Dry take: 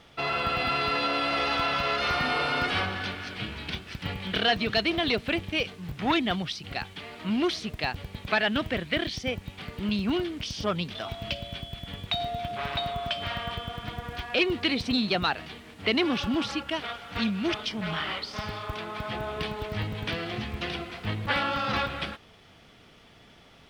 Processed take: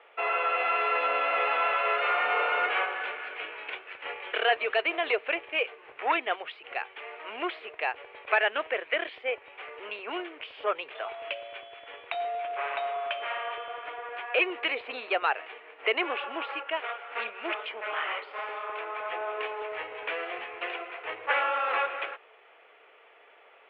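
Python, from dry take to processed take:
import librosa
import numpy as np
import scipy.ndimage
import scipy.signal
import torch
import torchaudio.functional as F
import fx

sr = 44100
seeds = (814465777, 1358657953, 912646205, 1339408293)

y = scipy.signal.sosfilt(scipy.signal.ellip(3, 1.0, 40, [440.0, 2600.0], 'bandpass', fs=sr, output='sos'), x)
y = y * 10.0 ** (2.0 / 20.0)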